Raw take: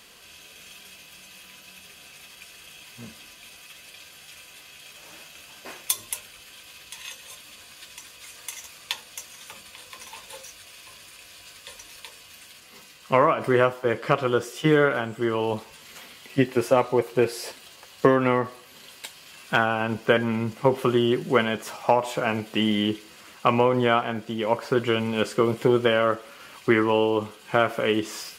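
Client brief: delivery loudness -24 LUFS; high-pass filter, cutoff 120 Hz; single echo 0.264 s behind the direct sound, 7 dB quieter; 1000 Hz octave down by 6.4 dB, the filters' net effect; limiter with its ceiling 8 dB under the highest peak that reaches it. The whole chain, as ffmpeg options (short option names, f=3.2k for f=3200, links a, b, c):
-af "highpass=120,equalizer=f=1k:t=o:g=-8.5,alimiter=limit=-14dB:level=0:latency=1,aecho=1:1:264:0.447,volume=3.5dB"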